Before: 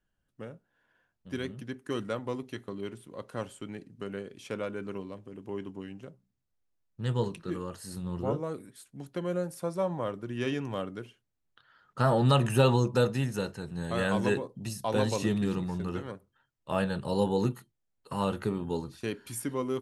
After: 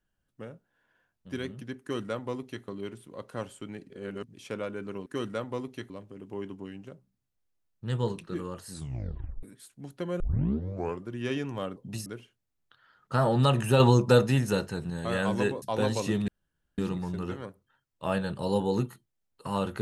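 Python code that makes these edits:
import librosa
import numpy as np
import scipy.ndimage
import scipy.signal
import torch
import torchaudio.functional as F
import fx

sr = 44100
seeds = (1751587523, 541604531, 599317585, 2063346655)

y = fx.edit(x, sr, fx.duplicate(start_s=1.81, length_s=0.84, to_s=5.06),
    fx.reverse_span(start_s=3.9, length_s=0.44),
    fx.tape_stop(start_s=7.87, length_s=0.72),
    fx.tape_start(start_s=9.36, length_s=0.86),
    fx.clip_gain(start_s=12.66, length_s=1.1, db=5.0),
    fx.move(start_s=14.48, length_s=0.3, to_s=10.92),
    fx.insert_room_tone(at_s=15.44, length_s=0.5), tone=tone)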